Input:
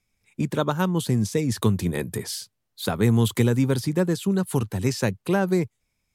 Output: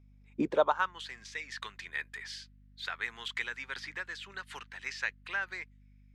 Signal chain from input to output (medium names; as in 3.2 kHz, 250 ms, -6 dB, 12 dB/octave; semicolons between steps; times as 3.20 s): high-pass sweep 200 Hz -> 1.8 kHz, 0.25–0.94 s; hum 50 Hz, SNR 23 dB; distance through air 160 m; 3.76–4.59 s: three bands compressed up and down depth 70%; trim -4.5 dB